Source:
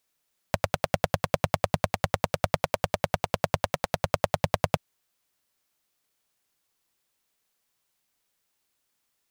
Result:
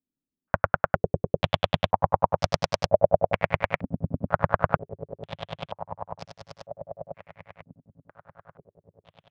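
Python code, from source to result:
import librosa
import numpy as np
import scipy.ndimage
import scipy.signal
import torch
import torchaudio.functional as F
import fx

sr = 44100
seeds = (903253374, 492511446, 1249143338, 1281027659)

y = fx.wiener(x, sr, points=9)
y = fx.leveller(y, sr, passes=1)
y = fx.echo_swing(y, sr, ms=1482, ratio=1.5, feedback_pct=42, wet_db=-13.5)
y = fx.filter_held_lowpass(y, sr, hz=2.1, low_hz=260.0, high_hz=5200.0)
y = y * 10.0 ** (-2.5 / 20.0)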